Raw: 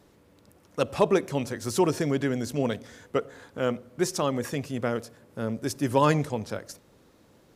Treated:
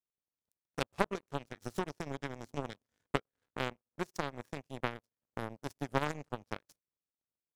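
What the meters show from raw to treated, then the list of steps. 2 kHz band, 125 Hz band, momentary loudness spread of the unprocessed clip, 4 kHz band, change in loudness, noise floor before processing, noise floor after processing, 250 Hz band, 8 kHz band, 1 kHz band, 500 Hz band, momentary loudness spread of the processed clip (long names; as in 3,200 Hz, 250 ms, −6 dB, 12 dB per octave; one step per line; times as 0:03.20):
−5.5 dB, −12.0 dB, 14 LU, −8.5 dB, −12.0 dB, −60 dBFS, below −85 dBFS, −13.5 dB, −16.5 dB, −9.0 dB, −13.5 dB, 11 LU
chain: low-shelf EQ 240 Hz +4.5 dB
downward compressor 3 to 1, threshold −37 dBFS, peak gain reduction 16.5 dB
power curve on the samples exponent 3
level +12 dB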